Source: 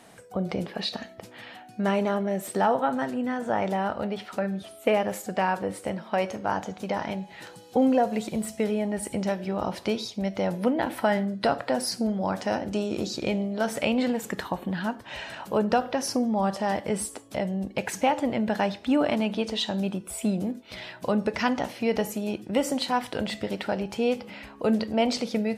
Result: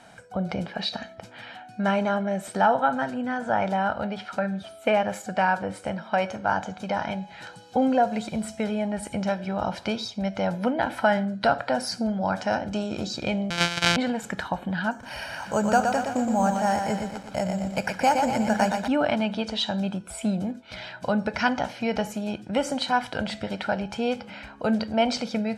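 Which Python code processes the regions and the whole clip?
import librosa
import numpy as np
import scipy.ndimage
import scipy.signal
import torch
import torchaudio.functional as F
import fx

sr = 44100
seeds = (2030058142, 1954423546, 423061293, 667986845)

y = fx.chain(x, sr, fx.sample_sort(block=256),
    fx.weighting(curve='D'), at=(13.5, 13.97))
y = fx.chain(y, sr, fx.resample_bad(factor=6, down='filtered', up='hold'),
    fx.echo_crushed(ms=119, feedback_pct=55, bits=8, wet_db=-5), at=(14.91, 18.88))
y = scipy.signal.sosfilt(scipy.signal.butter(2, 7900.0, 'lowpass', fs=sr, output='sos'), y)
y = fx.peak_eq(y, sr, hz=1400.0, db=5.5, octaves=0.46)
y = y + 0.49 * np.pad(y, (int(1.3 * sr / 1000.0), 0))[:len(y)]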